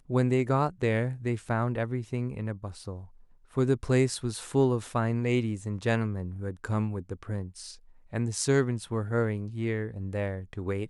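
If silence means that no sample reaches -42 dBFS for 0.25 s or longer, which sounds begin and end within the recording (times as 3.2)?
3.56–7.75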